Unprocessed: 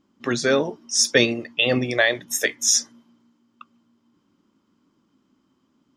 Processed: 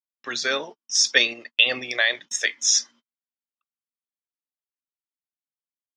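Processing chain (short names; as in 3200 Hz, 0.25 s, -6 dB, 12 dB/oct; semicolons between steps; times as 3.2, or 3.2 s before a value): weighting filter ITU-R 468; gate -33 dBFS, range -39 dB; in parallel at +1 dB: level quantiser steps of 11 dB; on the sum: air absorption 150 m; gain -7.5 dB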